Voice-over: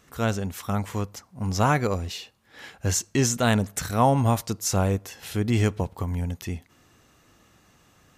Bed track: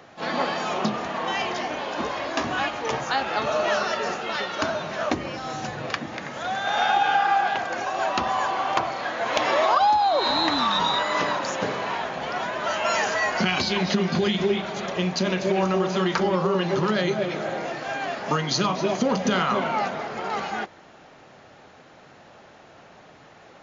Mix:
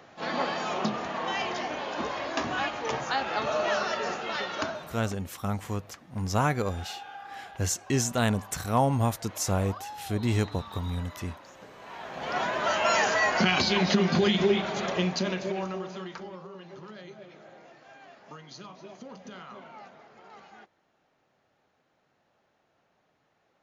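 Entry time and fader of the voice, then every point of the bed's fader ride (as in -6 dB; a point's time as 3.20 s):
4.75 s, -4.0 dB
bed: 4.58 s -4 dB
5.18 s -22.5 dB
11.70 s -22.5 dB
12.37 s -0.5 dB
14.92 s -0.5 dB
16.49 s -22 dB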